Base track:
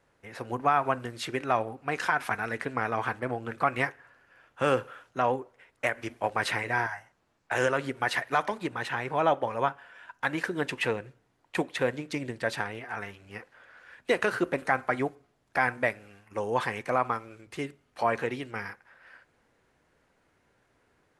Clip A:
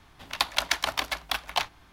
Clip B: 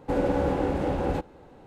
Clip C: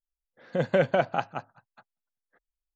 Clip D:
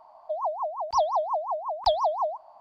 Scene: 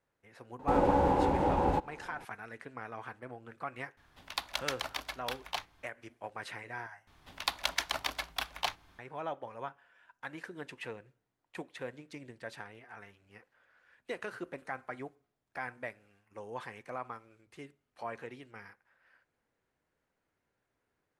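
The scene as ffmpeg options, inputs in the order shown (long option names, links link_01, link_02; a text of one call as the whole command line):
ffmpeg -i bed.wav -i cue0.wav -i cue1.wav -filter_complex "[1:a]asplit=2[link_01][link_02];[0:a]volume=-14dB[link_03];[2:a]equalizer=frequency=910:width=3.9:gain=12.5[link_04];[link_03]asplit=2[link_05][link_06];[link_05]atrim=end=7.074[link_07];[link_02]atrim=end=1.92,asetpts=PTS-STARTPTS,volume=-6.5dB[link_08];[link_06]atrim=start=8.986[link_09];[link_04]atrim=end=1.66,asetpts=PTS-STARTPTS,volume=-3.5dB,afade=type=in:duration=0.004:curve=hsin,afade=type=out:start_time=1.656:duration=0.004:curve=hsin,adelay=590[link_10];[link_01]atrim=end=1.92,asetpts=PTS-STARTPTS,volume=-10dB,afade=type=in:duration=0.004:curve=hsin,afade=type=out:start_time=1.916:duration=0.004:curve=hsin,adelay=175077S[link_11];[link_07][link_08]acrossfade=duration=0.004:curve1=hsin:curve2=hsin[link_12];[link_12][link_09]acrossfade=duration=0.004:curve1=hsin:curve2=hsin[link_13];[link_13][link_10][link_11]amix=inputs=3:normalize=0" out.wav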